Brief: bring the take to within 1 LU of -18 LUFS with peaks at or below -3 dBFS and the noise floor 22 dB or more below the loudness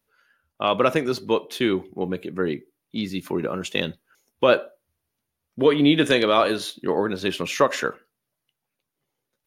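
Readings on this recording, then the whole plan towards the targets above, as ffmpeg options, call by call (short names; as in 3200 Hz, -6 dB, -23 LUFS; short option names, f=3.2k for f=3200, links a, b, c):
loudness -23.0 LUFS; peak -4.5 dBFS; loudness target -18.0 LUFS
-> -af "volume=5dB,alimiter=limit=-3dB:level=0:latency=1"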